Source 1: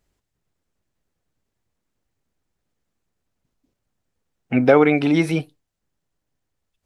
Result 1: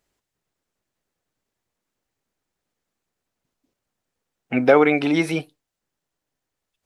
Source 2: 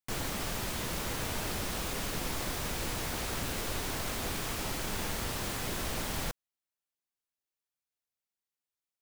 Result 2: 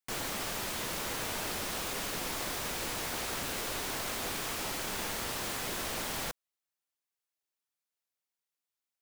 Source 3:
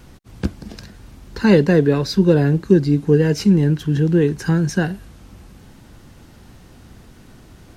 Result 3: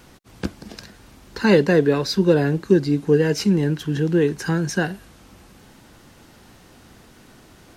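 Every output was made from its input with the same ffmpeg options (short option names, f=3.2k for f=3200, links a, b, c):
-af "lowshelf=f=190:g=-11.5,volume=1dB"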